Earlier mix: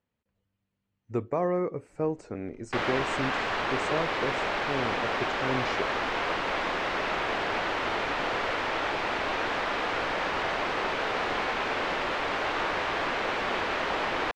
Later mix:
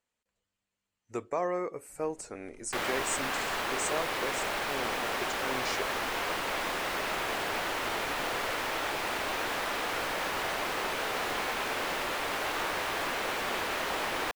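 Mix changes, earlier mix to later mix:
speech: add bell 120 Hz -14.5 dB 2.9 oct; second sound -4.5 dB; master: remove air absorption 160 m

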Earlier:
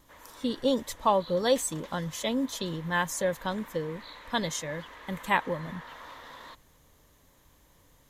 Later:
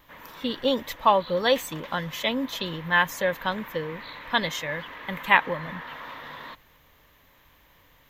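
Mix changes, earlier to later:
background: remove weighting filter A; master: add EQ curve 360 Hz 0 dB, 2600 Hz +11 dB, 9700 Hz -11 dB, 14000 Hz +8 dB

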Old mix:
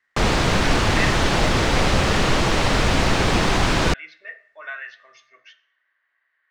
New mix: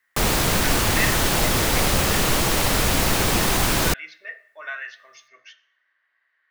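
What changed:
background -3.0 dB; master: remove air absorption 110 m

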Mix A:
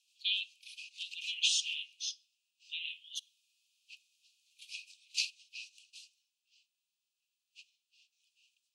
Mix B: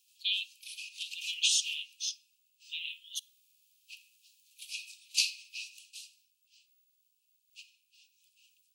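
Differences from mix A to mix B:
background: send on; master: remove air absorption 66 m

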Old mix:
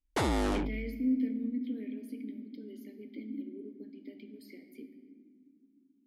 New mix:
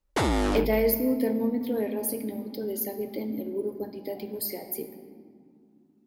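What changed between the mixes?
speech: remove vowel filter i; background +4.5 dB

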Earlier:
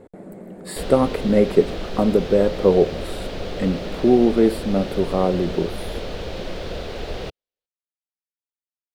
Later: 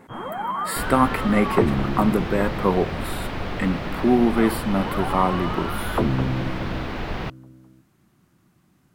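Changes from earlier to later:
speech: add tilt +3 dB/oct; first sound: unmuted; master: add graphic EQ 125/250/500/1000/2000/4000/8000 Hz +6/+6/-9/+9/+5/-4/-6 dB

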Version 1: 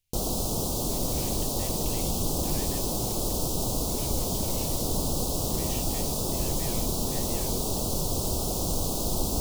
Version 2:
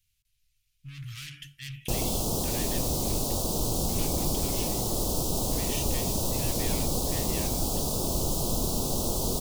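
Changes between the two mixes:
speech +5.0 dB; background: entry +1.75 s

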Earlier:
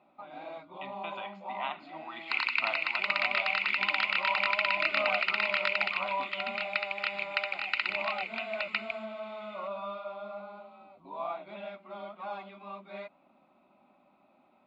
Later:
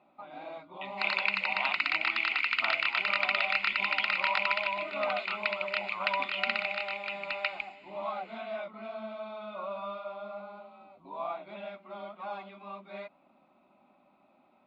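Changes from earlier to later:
speech: add tilt +2 dB/oct; second sound: entry -1.30 s

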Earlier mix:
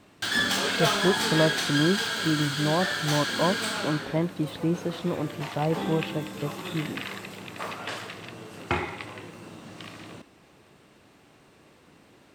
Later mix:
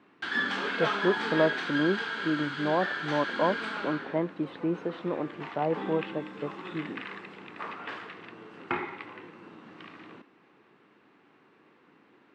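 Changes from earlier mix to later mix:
background: add bell 620 Hz -10 dB 0.67 oct; master: add BPF 270–2000 Hz

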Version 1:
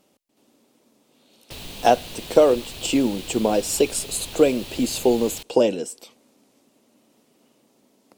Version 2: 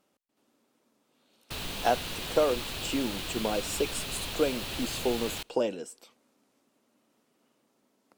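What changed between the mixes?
speech -11.0 dB; master: add bell 1400 Hz +7.5 dB 1.1 oct

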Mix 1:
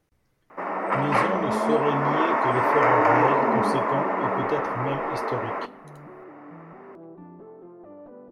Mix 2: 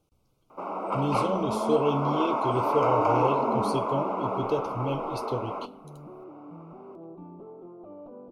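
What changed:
first sound -4.0 dB; master: add Butterworth band-stop 1800 Hz, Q 1.6

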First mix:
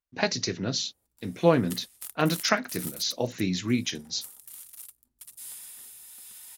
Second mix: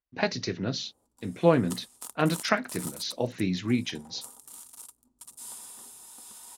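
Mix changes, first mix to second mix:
speech: add air absorption 130 m; background: add ten-band EQ 250 Hz +10 dB, 500 Hz +5 dB, 1000 Hz +12 dB, 2000 Hz -8 dB, 8000 Hz +8 dB, 16000 Hz -11 dB

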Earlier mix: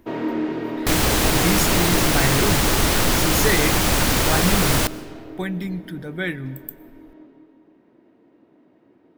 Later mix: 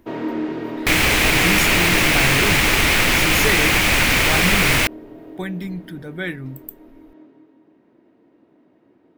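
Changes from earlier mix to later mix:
second sound: add bell 2300 Hz +13.5 dB 0.94 oct; reverb: off

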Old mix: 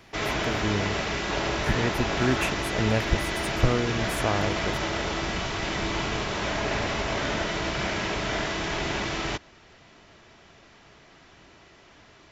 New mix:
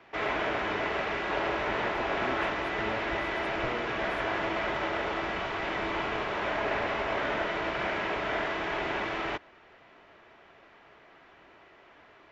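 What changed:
speech -9.0 dB; master: add three-band isolator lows -12 dB, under 320 Hz, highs -21 dB, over 2900 Hz

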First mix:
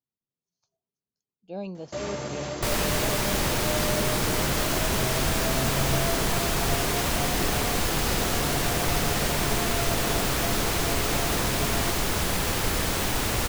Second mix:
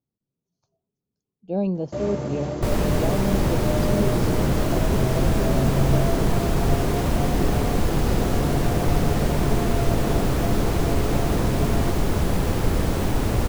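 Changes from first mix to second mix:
speech +5.5 dB; master: add tilt shelf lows +8 dB, about 920 Hz

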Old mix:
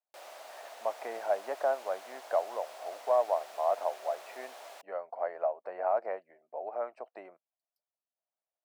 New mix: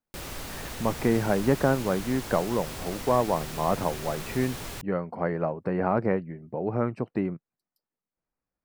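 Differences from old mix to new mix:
background: add high shelf 8400 Hz +7 dB; master: remove ladder high-pass 600 Hz, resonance 70%

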